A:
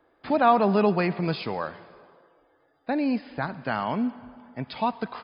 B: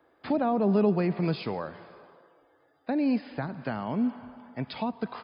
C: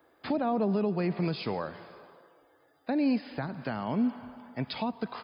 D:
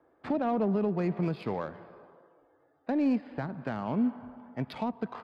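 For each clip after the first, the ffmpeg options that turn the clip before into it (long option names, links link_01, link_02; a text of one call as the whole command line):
ffmpeg -i in.wav -filter_complex "[0:a]highpass=60,acrossover=split=530[link_01][link_02];[link_02]acompressor=threshold=-36dB:ratio=5[link_03];[link_01][link_03]amix=inputs=2:normalize=0" out.wav
ffmpeg -i in.wav -af "alimiter=limit=-20dB:level=0:latency=1:release=217,crystalizer=i=1.5:c=0" out.wav
ffmpeg -i in.wav -af "adynamicsmooth=sensitivity=3:basefreq=1500" out.wav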